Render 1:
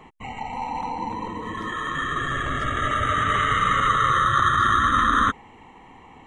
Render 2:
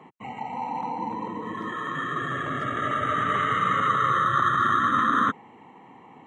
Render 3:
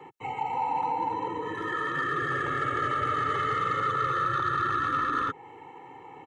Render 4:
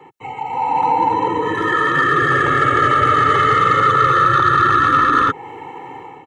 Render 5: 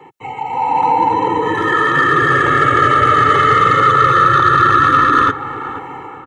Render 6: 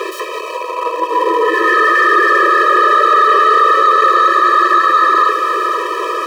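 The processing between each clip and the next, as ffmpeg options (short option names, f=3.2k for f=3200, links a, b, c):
-af "highpass=f=130:w=0.5412,highpass=f=130:w=1.3066,highshelf=f=2.3k:g=-11"
-filter_complex "[0:a]acrossover=split=210|830[a][b][c];[a]acompressor=threshold=-38dB:ratio=4[d];[b]acompressor=threshold=-35dB:ratio=4[e];[c]acompressor=threshold=-30dB:ratio=4[f];[d][e][f]amix=inputs=3:normalize=0,asoftclip=type=tanh:threshold=-22dB,aecho=1:1:2.3:0.89"
-af "dynaudnorm=f=460:g=3:m=10.5dB,volume=3.5dB"
-filter_complex "[0:a]asplit=2[a][b];[b]adelay=482,lowpass=f=1.7k:p=1,volume=-13dB,asplit=2[c][d];[d]adelay=482,lowpass=f=1.7k:p=1,volume=0.38,asplit=2[e][f];[f]adelay=482,lowpass=f=1.7k:p=1,volume=0.38,asplit=2[g][h];[h]adelay=482,lowpass=f=1.7k:p=1,volume=0.38[i];[a][c][e][g][i]amix=inputs=5:normalize=0,volume=2.5dB"
-filter_complex "[0:a]aeval=exprs='val(0)+0.5*0.168*sgn(val(0))':c=same,asplit=2[a][b];[b]highpass=f=720:p=1,volume=16dB,asoftclip=type=tanh:threshold=0dB[c];[a][c]amix=inputs=2:normalize=0,lowpass=f=1.2k:p=1,volume=-6dB,afftfilt=real='re*eq(mod(floor(b*sr/1024/330),2),1)':imag='im*eq(mod(floor(b*sr/1024/330),2),1)':win_size=1024:overlap=0.75"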